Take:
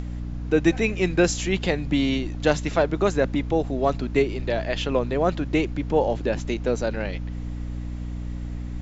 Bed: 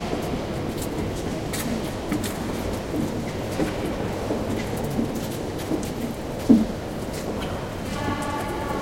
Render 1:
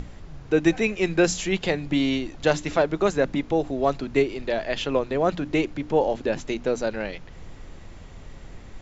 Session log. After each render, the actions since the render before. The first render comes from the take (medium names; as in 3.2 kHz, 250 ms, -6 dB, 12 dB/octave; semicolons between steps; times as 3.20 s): hum notches 60/120/180/240/300 Hz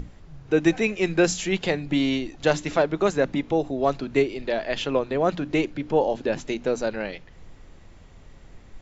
noise print and reduce 6 dB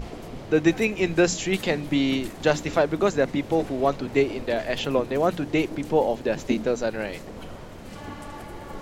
add bed -11.5 dB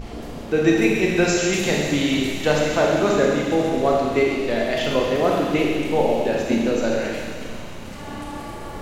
feedback echo behind a high-pass 134 ms, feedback 83%, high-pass 2.2 kHz, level -9.5 dB; Schroeder reverb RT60 1.6 s, combs from 27 ms, DRR -2 dB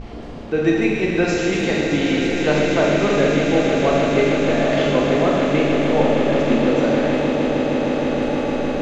distance through air 110 m; echo with a slow build-up 155 ms, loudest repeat 8, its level -11 dB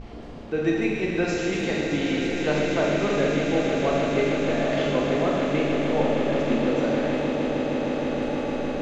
trim -6 dB